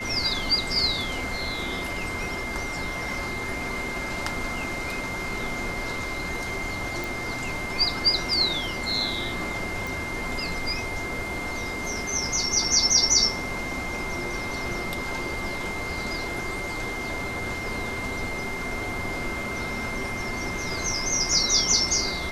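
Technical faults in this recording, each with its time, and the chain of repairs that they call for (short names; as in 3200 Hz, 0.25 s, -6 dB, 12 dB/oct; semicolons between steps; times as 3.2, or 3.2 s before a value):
tone 2100 Hz -32 dBFS
7.04 pop
9.87 pop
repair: de-click; notch 2100 Hz, Q 30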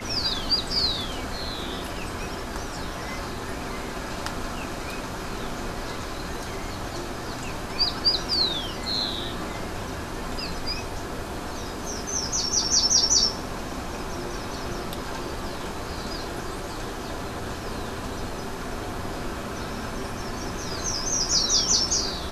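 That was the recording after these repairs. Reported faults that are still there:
9.87 pop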